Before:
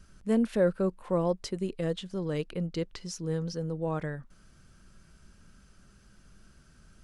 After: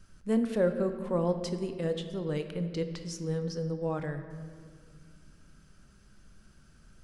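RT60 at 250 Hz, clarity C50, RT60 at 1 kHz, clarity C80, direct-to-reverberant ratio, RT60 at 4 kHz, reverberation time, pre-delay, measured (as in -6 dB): 3.0 s, 9.0 dB, 1.7 s, 10.5 dB, 7.5 dB, 1.4 s, 2.0 s, 7 ms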